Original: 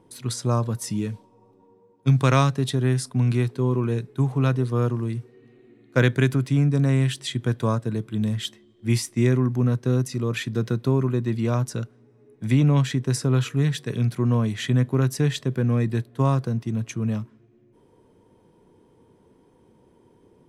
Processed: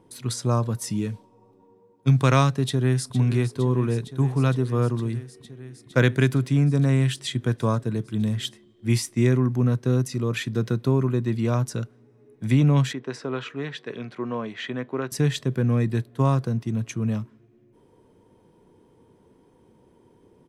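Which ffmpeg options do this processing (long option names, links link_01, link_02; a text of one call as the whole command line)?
ffmpeg -i in.wav -filter_complex "[0:a]asplit=2[link_01][link_02];[link_02]afade=type=in:start_time=2.64:duration=0.01,afade=type=out:start_time=3.15:duration=0.01,aecho=0:1:460|920|1380|1840|2300|2760|3220|3680|4140|4600|5060|5520:0.237137|0.201567|0.171332|0.145632|0.123787|0.105219|0.0894362|0.0760208|0.0646177|0.054925|0.0466863|0.0396833[link_03];[link_01][link_03]amix=inputs=2:normalize=0,asettb=1/sr,asplit=3[link_04][link_05][link_06];[link_04]atrim=end=12.934[link_07];[link_05]atrim=start=12.93:end=15.12,asetpts=PTS-STARTPTS,afade=type=in:duration=0.004:curve=qsin,afade=type=out:start_time=2.186:duration=0.004:curve=qsin,highpass=350,lowpass=3100[link_08];[link_06]atrim=start=15.116[link_09];[link_07][link_08]acrossfade=duration=0.004:curve1=hsin:curve2=qsin[link_10];[link_10][link_09]acrossfade=duration=0.004:curve1=qsin:curve2=hsin" out.wav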